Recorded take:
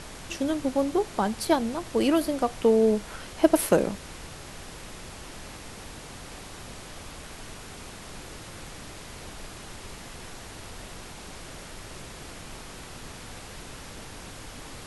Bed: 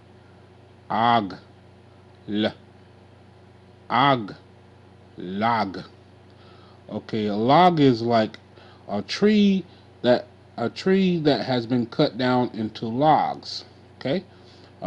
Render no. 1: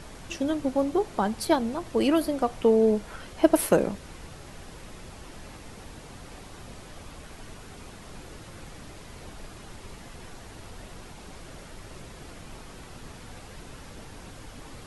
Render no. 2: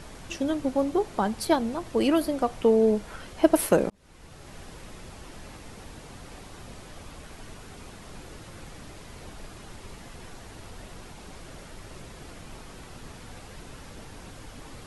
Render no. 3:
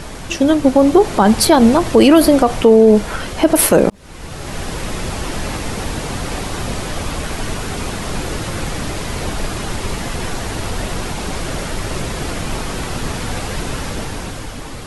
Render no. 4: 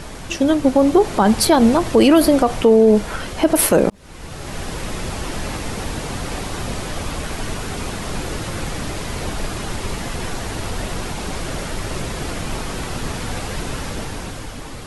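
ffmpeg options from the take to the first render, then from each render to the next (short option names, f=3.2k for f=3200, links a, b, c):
-af "afftdn=nr=6:nf=-43"
-filter_complex "[0:a]asplit=2[a][b];[a]atrim=end=3.9,asetpts=PTS-STARTPTS,afade=t=out:st=3.896:d=0.004:c=hsin[c];[b]atrim=start=3.9,asetpts=PTS-STARTPTS,afade=t=in:d=0.67[d];[c][d]concat=n=2:v=0:a=1"
-af "dynaudnorm=f=140:g=13:m=7.5dB,alimiter=level_in=13.5dB:limit=-1dB:release=50:level=0:latency=1"
-af "volume=-3dB"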